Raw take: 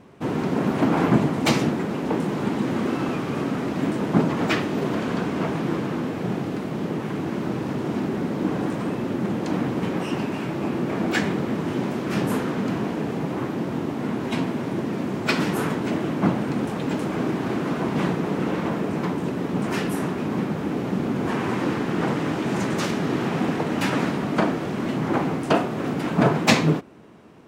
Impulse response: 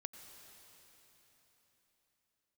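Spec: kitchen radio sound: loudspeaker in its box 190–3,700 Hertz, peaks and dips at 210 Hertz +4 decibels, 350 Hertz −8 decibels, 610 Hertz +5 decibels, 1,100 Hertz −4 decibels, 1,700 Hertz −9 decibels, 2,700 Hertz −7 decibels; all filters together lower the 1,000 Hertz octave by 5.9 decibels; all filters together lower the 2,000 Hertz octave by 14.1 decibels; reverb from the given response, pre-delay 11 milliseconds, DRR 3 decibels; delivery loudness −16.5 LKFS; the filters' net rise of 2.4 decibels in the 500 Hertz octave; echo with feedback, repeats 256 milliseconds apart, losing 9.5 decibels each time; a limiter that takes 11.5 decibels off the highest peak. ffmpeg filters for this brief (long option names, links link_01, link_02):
-filter_complex "[0:a]equalizer=frequency=500:width_type=o:gain=6.5,equalizer=frequency=1000:width_type=o:gain=-9,equalizer=frequency=2000:width_type=o:gain=-8,alimiter=limit=-15dB:level=0:latency=1,aecho=1:1:256|512|768|1024:0.335|0.111|0.0365|0.012,asplit=2[link_01][link_02];[1:a]atrim=start_sample=2205,adelay=11[link_03];[link_02][link_03]afir=irnorm=-1:irlink=0,volume=1dB[link_04];[link_01][link_04]amix=inputs=2:normalize=0,highpass=190,equalizer=frequency=210:width_type=q:width=4:gain=4,equalizer=frequency=350:width_type=q:width=4:gain=-8,equalizer=frequency=610:width_type=q:width=4:gain=5,equalizer=frequency=1100:width_type=q:width=4:gain=-4,equalizer=frequency=1700:width_type=q:width=4:gain=-9,equalizer=frequency=2700:width_type=q:width=4:gain=-7,lowpass=frequency=3700:width=0.5412,lowpass=frequency=3700:width=1.3066,volume=8dB"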